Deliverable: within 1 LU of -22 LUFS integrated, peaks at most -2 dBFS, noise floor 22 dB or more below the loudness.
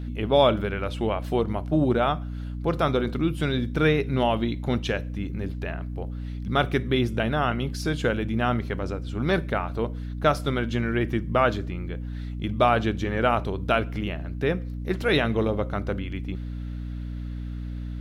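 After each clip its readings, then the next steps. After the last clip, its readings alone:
hum 60 Hz; harmonics up to 300 Hz; hum level -30 dBFS; loudness -26.0 LUFS; peak -7.5 dBFS; loudness target -22.0 LUFS
-> de-hum 60 Hz, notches 5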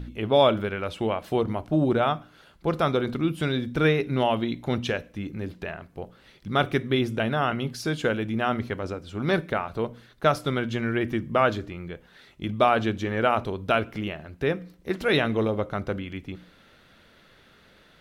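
hum none; loudness -26.0 LUFS; peak -7.5 dBFS; loudness target -22.0 LUFS
-> gain +4 dB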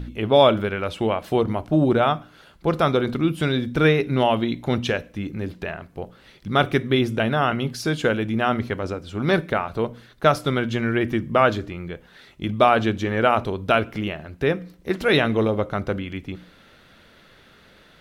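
loudness -22.0 LUFS; peak -3.5 dBFS; noise floor -52 dBFS

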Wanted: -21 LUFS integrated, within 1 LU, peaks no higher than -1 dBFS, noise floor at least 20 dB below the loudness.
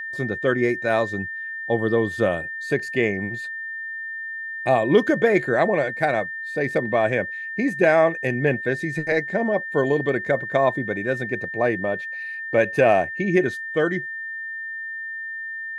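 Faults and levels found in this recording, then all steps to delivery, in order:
steady tone 1800 Hz; tone level -29 dBFS; loudness -23.0 LUFS; peak -3.5 dBFS; loudness target -21.0 LUFS
-> notch 1800 Hz, Q 30; gain +2 dB

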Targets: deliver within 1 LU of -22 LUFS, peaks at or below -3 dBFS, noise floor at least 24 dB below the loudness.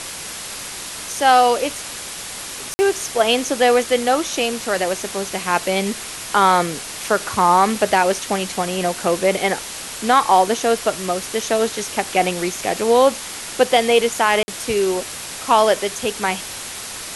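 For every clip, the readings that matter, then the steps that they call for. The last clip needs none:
dropouts 2; longest dropout 50 ms; noise floor -32 dBFS; noise floor target -43 dBFS; loudness -19.0 LUFS; peak -2.0 dBFS; loudness target -22.0 LUFS
-> interpolate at 2.74/14.43, 50 ms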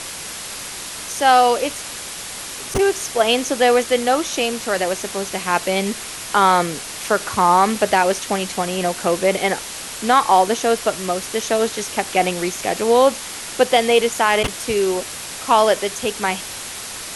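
dropouts 0; noise floor -32 dBFS; noise floor target -43 dBFS
-> noise print and reduce 11 dB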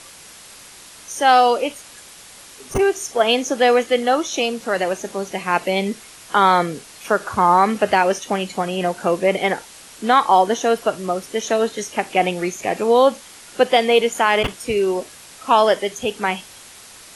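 noise floor -42 dBFS; noise floor target -43 dBFS
-> noise print and reduce 6 dB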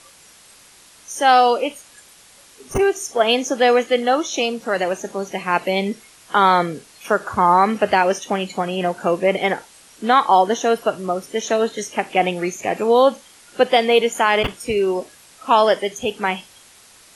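noise floor -48 dBFS; loudness -19.0 LUFS; peak -2.5 dBFS; loudness target -22.0 LUFS
-> gain -3 dB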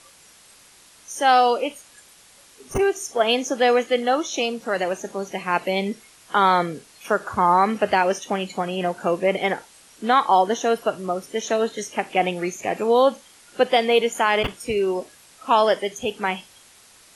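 loudness -22.0 LUFS; peak -5.5 dBFS; noise floor -51 dBFS

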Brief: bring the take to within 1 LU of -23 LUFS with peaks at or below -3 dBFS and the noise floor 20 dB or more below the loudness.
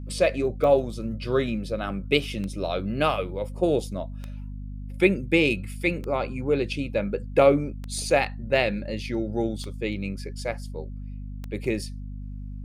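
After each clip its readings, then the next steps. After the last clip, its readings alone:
clicks 7; hum 50 Hz; harmonics up to 250 Hz; hum level -33 dBFS; loudness -26.0 LUFS; peak -4.5 dBFS; loudness target -23.0 LUFS
-> de-click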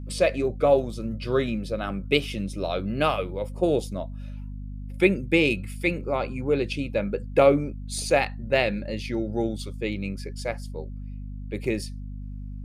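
clicks 0; hum 50 Hz; harmonics up to 250 Hz; hum level -33 dBFS
-> de-hum 50 Hz, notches 5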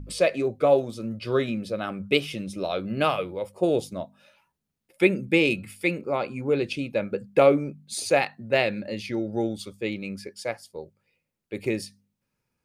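hum none; loudness -26.0 LUFS; peak -4.5 dBFS; loudness target -23.0 LUFS
-> gain +3 dB; limiter -3 dBFS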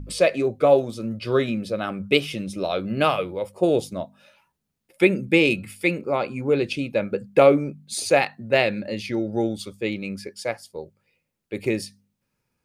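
loudness -23.0 LUFS; peak -3.0 dBFS; noise floor -79 dBFS

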